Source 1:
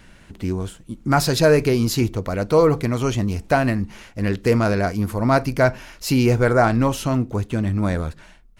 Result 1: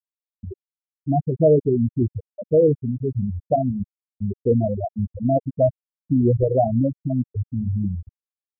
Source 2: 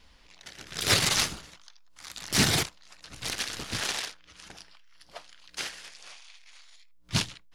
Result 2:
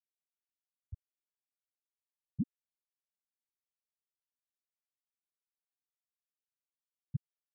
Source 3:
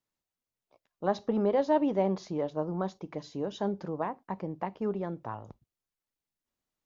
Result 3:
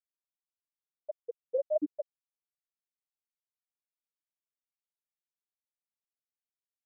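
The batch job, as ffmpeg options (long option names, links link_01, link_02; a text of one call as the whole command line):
ffmpeg -i in.wav -af "aeval=exprs='val(0)+0.0224*sin(2*PI*640*n/s)':channel_layout=same,asuperstop=centerf=1400:order=12:qfactor=0.87,afftfilt=real='re*gte(hypot(re,im),0.631)':imag='im*gte(hypot(re,im),0.631)':win_size=1024:overlap=0.75" out.wav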